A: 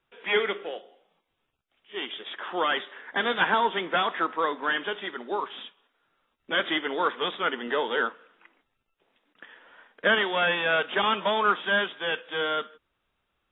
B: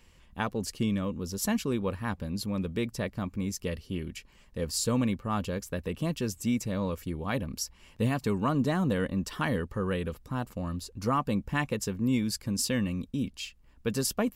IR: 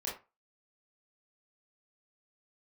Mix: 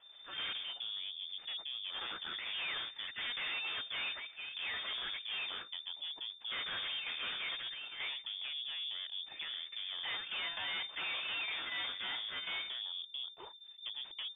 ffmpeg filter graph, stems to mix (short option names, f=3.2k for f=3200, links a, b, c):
-filter_complex "[0:a]adynamicequalizer=threshold=0.0126:dfrequency=970:dqfactor=2:tfrequency=970:tqfactor=2:attack=5:release=100:ratio=0.375:range=3:mode=boostabove:tftype=bell,acrusher=samples=8:mix=1:aa=0.000001,asoftclip=type=tanh:threshold=-20dB,volume=0dB[a];[1:a]lowshelf=f=70:g=9.5,acompressor=threshold=-39dB:ratio=2.5,volume=-0.5dB,asplit=2[b][c];[c]apad=whole_len=595874[d];[a][d]sidechaingate=range=-16dB:threshold=-42dB:ratio=16:detection=peak[e];[e][b]amix=inputs=2:normalize=0,aeval=exprs='(tanh(79.4*val(0)+0.7)-tanh(0.7))/79.4':c=same,lowpass=f=3.1k:t=q:w=0.5098,lowpass=f=3.1k:t=q:w=0.6013,lowpass=f=3.1k:t=q:w=0.9,lowpass=f=3.1k:t=q:w=2.563,afreqshift=-3600"